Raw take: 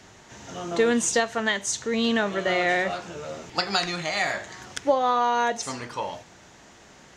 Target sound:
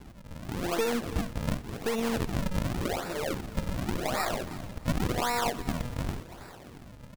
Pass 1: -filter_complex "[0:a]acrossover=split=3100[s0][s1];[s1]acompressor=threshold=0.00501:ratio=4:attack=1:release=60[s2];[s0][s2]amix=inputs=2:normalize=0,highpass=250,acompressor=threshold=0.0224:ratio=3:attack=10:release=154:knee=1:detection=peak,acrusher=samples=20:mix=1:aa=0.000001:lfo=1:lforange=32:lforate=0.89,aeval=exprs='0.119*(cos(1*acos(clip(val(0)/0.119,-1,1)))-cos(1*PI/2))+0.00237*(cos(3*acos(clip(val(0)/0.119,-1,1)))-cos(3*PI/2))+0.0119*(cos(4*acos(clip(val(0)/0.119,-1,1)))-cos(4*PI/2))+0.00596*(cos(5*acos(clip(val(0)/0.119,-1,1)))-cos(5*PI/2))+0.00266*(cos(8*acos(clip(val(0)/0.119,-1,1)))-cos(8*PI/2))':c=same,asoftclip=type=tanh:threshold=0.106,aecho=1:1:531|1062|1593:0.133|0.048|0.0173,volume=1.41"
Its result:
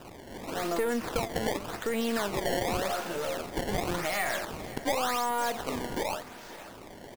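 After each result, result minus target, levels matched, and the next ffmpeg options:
echo 207 ms late; saturation: distortion +17 dB; decimation with a swept rate: distortion -10 dB
-filter_complex "[0:a]acrossover=split=3100[s0][s1];[s1]acompressor=threshold=0.00501:ratio=4:attack=1:release=60[s2];[s0][s2]amix=inputs=2:normalize=0,highpass=250,acompressor=threshold=0.0224:ratio=3:attack=10:release=154:knee=1:detection=peak,acrusher=samples=20:mix=1:aa=0.000001:lfo=1:lforange=32:lforate=0.89,aeval=exprs='0.119*(cos(1*acos(clip(val(0)/0.119,-1,1)))-cos(1*PI/2))+0.00237*(cos(3*acos(clip(val(0)/0.119,-1,1)))-cos(3*PI/2))+0.0119*(cos(4*acos(clip(val(0)/0.119,-1,1)))-cos(4*PI/2))+0.00596*(cos(5*acos(clip(val(0)/0.119,-1,1)))-cos(5*PI/2))+0.00266*(cos(8*acos(clip(val(0)/0.119,-1,1)))-cos(8*PI/2))':c=same,asoftclip=type=tanh:threshold=0.106,aecho=1:1:324|648|972:0.133|0.048|0.0173,volume=1.41"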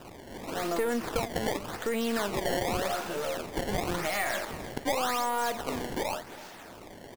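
saturation: distortion +17 dB; decimation with a swept rate: distortion -10 dB
-filter_complex "[0:a]acrossover=split=3100[s0][s1];[s1]acompressor=threshold=0.00501:ratio=4:attack=1:release=60[s2];[s0][s2]amix=inputs=2:normalize=0,highpass=250,acompressor=threshold=0.0224:ratio=3:attack=10:release=154:knee=1:detection=peak,acrusher=samples=20:mix=1:aa=0.000001:lfo=1:lforange=32:lforate=0.89,aeval=exprs='0.119*(cos(1*acos(clip(val(0)/0.119,-1,1)))-cos(1*PI/2))+0.00237*(cos(3*acos(clip(val(0)/0.119,-1,1)))-cos(3*PI/2))+0.0119*(cos(4*acos(clip(val(0)/0.119,-1,1)))-cos(4*PI/2))+0.00596*(cos(5*acos(clip(val(0)/0.119,-1,1)))-cos(5*PI/2))+0.00266*(cos(8*acos(clip(val(0)/0.119,-1,1)))-cos(8*PI/2))':c=same,asoftclip=type=tanh:threshold=0.299,aecho=1:1:324|648|972:0.133|0.048|0.0173,volume=1.41"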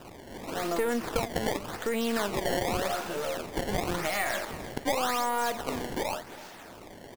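decimation with a swept rate: distortion -10 dB
-filter_complex "[0:a]acrossover=split=3100[s0][s1];[s1]acompressor=threshold=0.00501:ratio=4:attack=1:release=60[s2];[s0][s2]amix=inputs=2:normalize=0,highpass=250,acompressor=threshold=0.0224:ratio=3:attack=10:release=154:knee=1:detection=peak,acrusher=samples=67:mix=1:aa=0.000001:lfo=1:lforange=107:lforate=0.89,aeval=exprs='0.119*(cos(1*acos(clip(val(0)/0.119,-1,1)))-cos(1*PI/2))+0.00237*(cos(3*acos(clip(val(0)/0.119,-1,1)))-cos(3*PI/2))+0.0119*(cos(4*acos(clip(val(0)/0.119,-1,1)))-cos(4*PI/2))+0.00596*(cos(5*acos(clip(val(0)/0.119,-1,1)))-cos(5*PI/2))+0.00266*(cos(8*acos(clip(val(0)/0.119,-1,1)))-cos(8*PI/2))':c=same,asoftclip=type=tanh:threshold=0.299,aecho=1:1:324|648|972:0.133|0.048|0.0173,volume=1.41"

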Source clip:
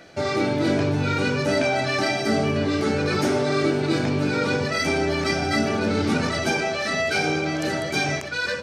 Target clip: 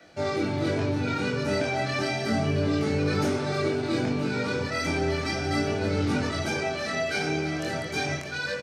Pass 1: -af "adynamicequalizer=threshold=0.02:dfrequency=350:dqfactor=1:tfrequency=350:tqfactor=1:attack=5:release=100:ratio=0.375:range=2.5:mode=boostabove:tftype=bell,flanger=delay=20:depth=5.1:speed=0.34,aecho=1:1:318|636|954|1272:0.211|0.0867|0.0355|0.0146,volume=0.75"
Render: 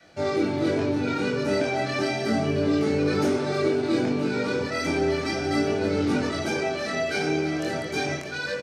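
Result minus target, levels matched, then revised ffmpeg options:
125 Hz band -4.5 dB
-af "adynamicequalizer=threshold=0.02:dfrequency=94:dqfactor=1:tfrequency=94:tqfactor=1:attack=5:release=100:ratio=0.375:range=2.5:mode=boostabove:tftype=bell,flanger=delay=20:depth=5.1:speed=0.34,aecho=1:1:318|636|954|1272:0.211|0.0867|0.0355|0.0146,volume=0.75"

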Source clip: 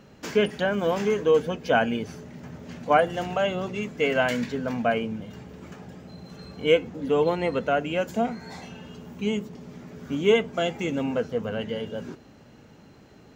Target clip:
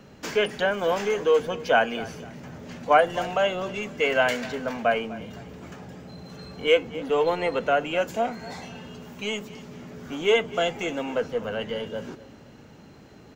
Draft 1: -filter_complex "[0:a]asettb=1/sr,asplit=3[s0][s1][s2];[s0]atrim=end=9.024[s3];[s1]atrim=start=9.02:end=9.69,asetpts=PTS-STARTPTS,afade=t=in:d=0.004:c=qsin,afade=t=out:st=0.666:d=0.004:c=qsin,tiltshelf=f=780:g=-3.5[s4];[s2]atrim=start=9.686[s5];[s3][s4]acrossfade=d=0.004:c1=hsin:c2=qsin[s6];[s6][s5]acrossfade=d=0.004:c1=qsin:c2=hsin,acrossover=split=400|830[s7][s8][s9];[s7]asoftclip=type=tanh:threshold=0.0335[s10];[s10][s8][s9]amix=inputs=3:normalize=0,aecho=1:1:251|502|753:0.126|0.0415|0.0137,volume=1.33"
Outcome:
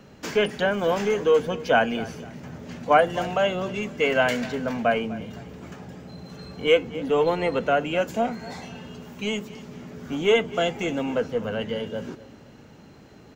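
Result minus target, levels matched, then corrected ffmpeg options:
saturation: distortion -6 dB
-filter_complex "[0:a]asettb=1/sr,asplit=3[s0][s1][s2];[s0]atrim=end=9.024[s3];[s1]atrim=start=9.02:end=9.69,asetpts=PTS-STARTPTS,afade=t=in:d=0.004:c=qsin,afade=t=out:st=0.666:d=0.004:c=qsin,tiltshelf=f=780:g=-3.5[s4];[s2]atrim=start=9.686[s5];[s3][s4]acrossfade=d=0.004:c1=hsin:c2=qsin[s6];[s6][s5]acrossfade=d=0.004:c1=qsin:c2=hsin,acrossover=split=400|830[s7][s8][s9];[s7]asoftclip=type=tanh:threshold=0.0112[s10];[s10][s8][s9]amix=inputs=3:normalize=0,aecho=1:1:251|502|753:0.126|0.0415|0.0137,volume=1.33"

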